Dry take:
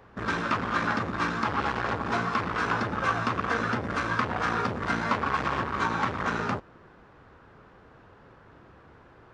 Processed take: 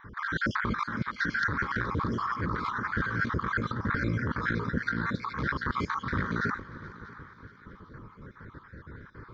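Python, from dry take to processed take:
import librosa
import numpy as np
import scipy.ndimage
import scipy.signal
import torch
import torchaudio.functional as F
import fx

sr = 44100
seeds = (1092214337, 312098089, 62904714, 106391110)

y = fx.spec_dropout(x, sr, seeds[0], share_pct=48)
y = fx.bass_treble(y, sr, bass_db=3, treble_db=-8)
y = fx.over_compress(y, sr, threshold_db=-34.0, ratio=-1.0)
y = fx.fixed_phaser(y, sr, hz=2700.0, stages=6)
y = fx.echo_heads(y, sr, ms=212, heads='second and third', feedback_pct=44, wet_db=-19.5)
y = y * 10.0 ** (5.5 / 20.0)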